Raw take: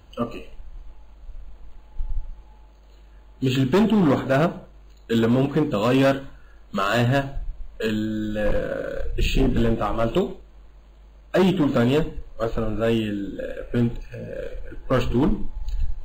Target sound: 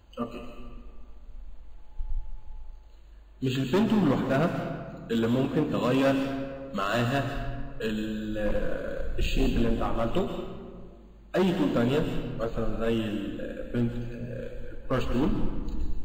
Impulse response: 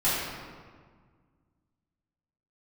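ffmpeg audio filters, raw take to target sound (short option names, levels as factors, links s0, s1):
-filter_complex "[0:a]flanger=delay=3.2:depth=1.8:regen=-73:speed=1.3:shape=sinusoidal,asplit=2[s0][s1];[1:a]atrim=start_sample=2205,highshelf=f=3400:g=9,adelay=123[s2];[s1][s2]afir=irnorm=-1:irlink=0,volume=0.0891[s3];[s0][s3]amix=inputs=2:normalize=0,volume=0.794"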